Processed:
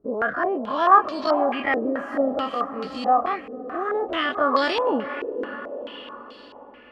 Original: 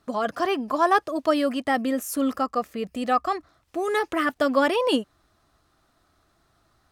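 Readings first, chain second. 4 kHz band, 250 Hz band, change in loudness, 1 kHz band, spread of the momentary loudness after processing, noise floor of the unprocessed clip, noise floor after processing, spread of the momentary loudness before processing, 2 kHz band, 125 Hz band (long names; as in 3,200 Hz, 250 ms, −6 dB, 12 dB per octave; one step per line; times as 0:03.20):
+0.5 dB, −2.0 dB, +1.5 dB, +4.0 dB, 16 LU, −67 dBFS, −46 dBFS, 9 LU, +2.0 dB, can't be measured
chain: every bin's largest magnitude spread in time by 60 ms
feedback delay with all-pass diffusion 529 ms, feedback 51%, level −10.5 dB
low-pass on a step sequencer 4.6 Hz 440–4,400 Hz
level −6 dB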